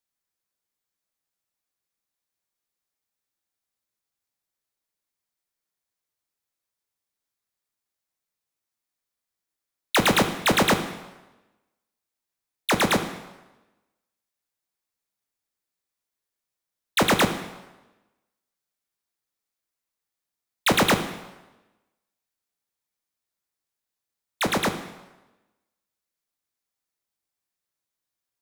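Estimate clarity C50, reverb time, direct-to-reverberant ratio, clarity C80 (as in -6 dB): 9.5 dB, 1.1 s, 7.0 dB, 11.5 dB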